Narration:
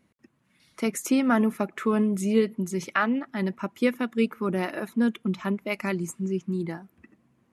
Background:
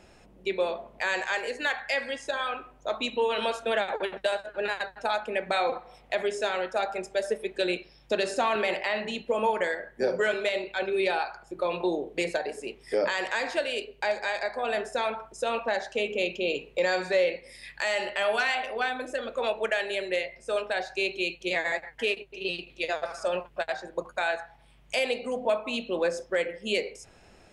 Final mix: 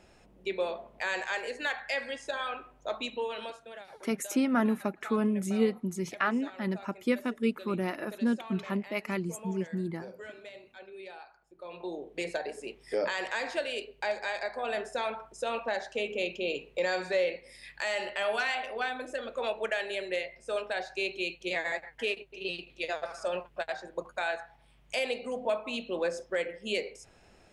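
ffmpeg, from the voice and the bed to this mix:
-filter_complex "[0:a]adelay=3250,volume=-4.5dB[a];[1:a]volume=11.5dB,afade=t=out:st=2.91:d=0.77:silence=0.16788,afade=t=in:st=11.57:d=0.87:silence=0.16788[b];[a][b]amix=inputs=2:normalize=0"

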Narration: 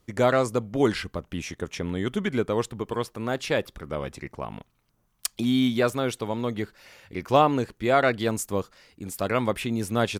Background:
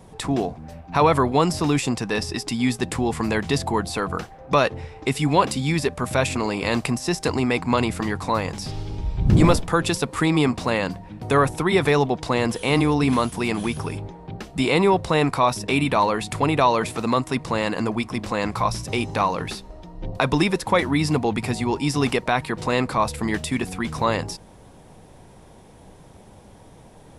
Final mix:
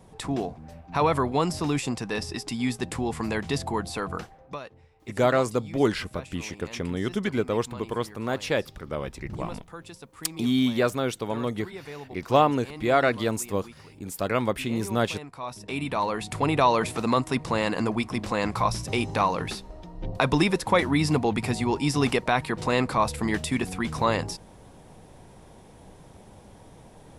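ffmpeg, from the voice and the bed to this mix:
-filter_complex "[0:a]adelay=5000,volume=-0.5dB[a];[1:a]volume=14dB,afade=t=out:st=4.24:d=0.35:silence=0.158489,afade=t=in:st=15.31:d=1.41:silence=0.105925[b];[a][b]amix=inputs=2:normalize=0"

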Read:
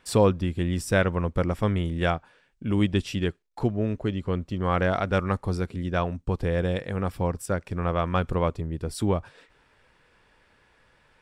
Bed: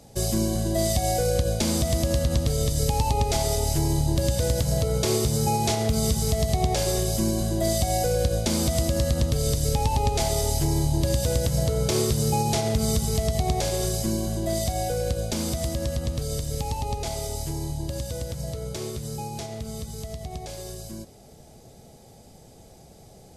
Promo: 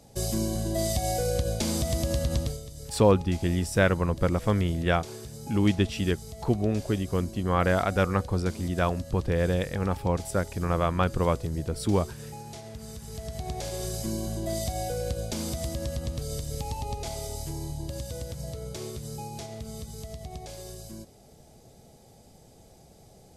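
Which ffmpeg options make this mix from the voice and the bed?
-filter_complex "[0:a]adelay=2850,volume=0dB[a];[1:a]volume=9.5dB,afade=t=out:st=2.41:d=0.2:silence=0.199526,afade=t=in:st=12.97:d=1.29:silence=0.211349[b];[a][b]amix=inputs=2:normalize=0"

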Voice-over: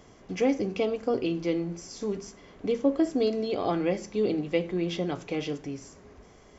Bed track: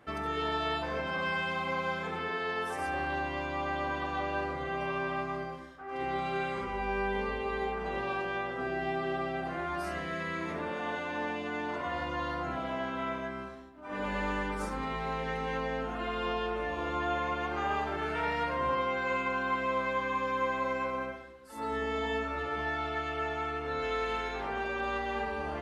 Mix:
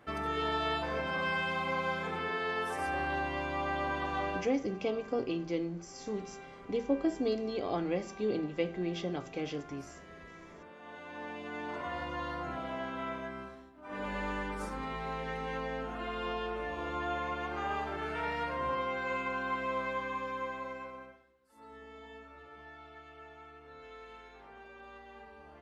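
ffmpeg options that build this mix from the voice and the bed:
-filter_complex "[0:a]adelay=4050,volume=-6dB[a];[1:a]volume=12.5dB,afade=t=out:st=4.29:d=0.2:silence=0.158489,afade=t=in:st=10.79:d=0.99:silence=0.223872,afade=t=out:st=19.85:d=1.4:silence=0.188365[b];[a][b]amix=inputs=2:normalize=0"

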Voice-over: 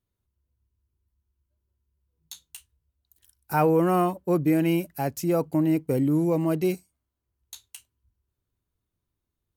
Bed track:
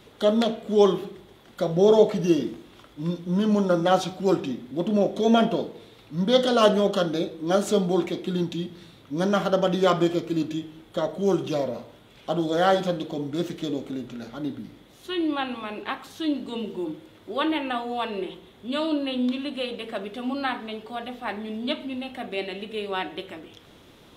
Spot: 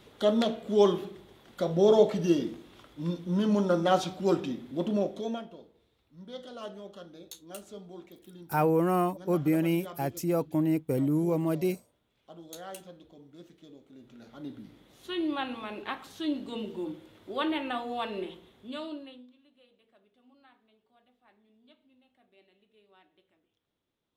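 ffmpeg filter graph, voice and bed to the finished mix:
-filter_complex "[0:a]adelay=5000,volume=-4dB[a];[1:a]volume=14dB,afade=t=out:st=4.83:d=0.6:silence=0.112202,afade=t=in:st=13.89:d=1.19:silence=0.125893,afade=t=out:st=18.21:d=1.06:silence=0.0398107[b];[a][b]amix=inputs=2:normalize=0"

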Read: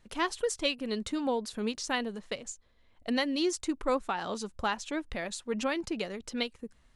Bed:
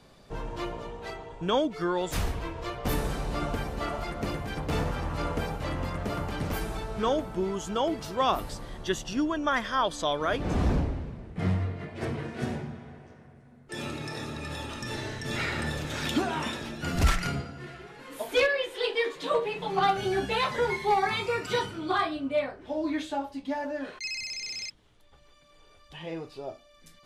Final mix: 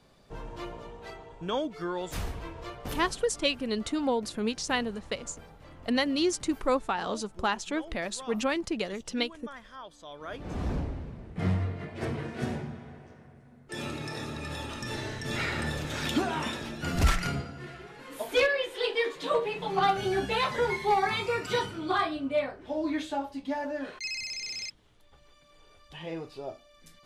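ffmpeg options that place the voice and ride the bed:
-filter_complex "[0:a]adelay=2800,volume=2.5dB[a];[1:a]volume=13dB,afade=t=out:st=2.62:d=0.67:silence=0.211349,afade=t=in:st=10.06:d=1.4:silence=0.125893[b];[a][b]amix=inputs=2:normalize=0"

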